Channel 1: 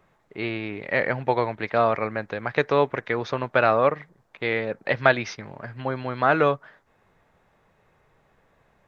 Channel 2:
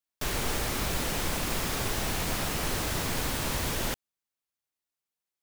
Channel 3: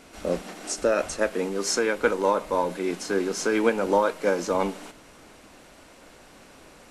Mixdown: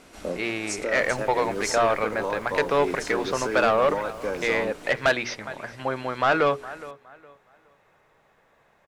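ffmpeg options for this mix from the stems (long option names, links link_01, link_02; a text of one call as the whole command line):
ffmpeg -i stem1.wav -i stem2.wav -i stem3.wav -filter_complex "[0:a]lowshelf=frequency=210:gain=-11,bandreject=frequency=60:width_type=h:width=6,bandreject=frequency=120:width_type=h:width=6,bandreject=frequency=180:width_type=h:width=6,bandreject=frequency=240:width_type=h:width=6,bandreject=frequency=300:width_type=h:width=6,bandreject=frequency=360:width_type=h:width=6,bandreject=frequency=420:width_type=h:width=6,volume=3dB,asplit=2[link_01][link_02];[link_02]volume=-20.5dB[link_03];[1:a]acrusher=samples=23:mix=1:aa=0.000001,adelay=700,volume=-15.5dB,asplit=2[link_04][link_05];[link_05]volume=-8dB[link_06];[2:a]alimiter=limit=-16.5dB:level=0:latency=1:release=405,volume=-1.5dB[link_07];[link_03][link_06]amix=inputs=2:normalize=0,aecho=0:1:414|828|1242|1656:1|0.27|0.0729|0.0197[link_08];[link_01][link_04][link_07][link_08]amix=inputs=4:normalize=0,asoftclip=type=tanh:threshold=-13dB" out.wav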